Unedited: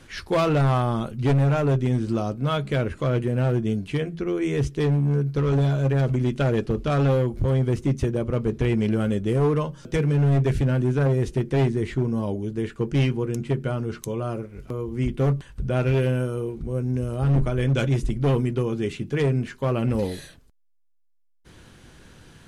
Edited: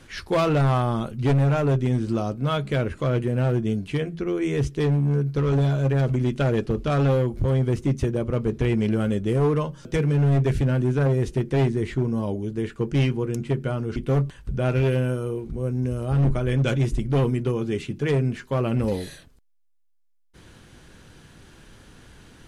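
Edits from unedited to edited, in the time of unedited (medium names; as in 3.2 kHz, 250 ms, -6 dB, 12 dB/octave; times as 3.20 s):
13.96–15.07 s: delete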